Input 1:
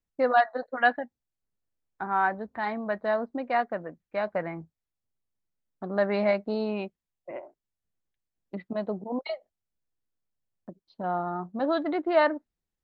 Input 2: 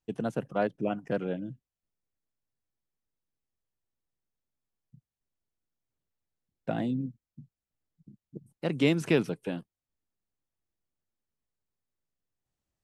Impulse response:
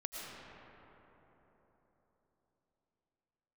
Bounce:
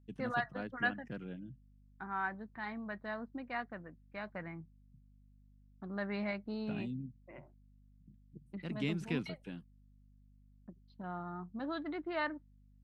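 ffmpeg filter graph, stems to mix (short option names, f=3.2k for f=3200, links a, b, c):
-filter_complex "[0:a]volume=-4.5dB[a];[1:a]volume=-6.5dB[b];[a][b]amix=inputs=2:normalize=0,lowpass=f=3.2k:p=1,equalizer=f=590:w=0.81:g=-13.5,aeval=exprs='val(0)+0.000794*(sin(2*PI*50*n/s)+sin(2*PI*2*50*n/s)/2+sin(2*PI*3*50*n/s)/3+sin(2*PI*4*50*n/s)/4+sin(2*PI*5*50*n/s)/5)':c=same"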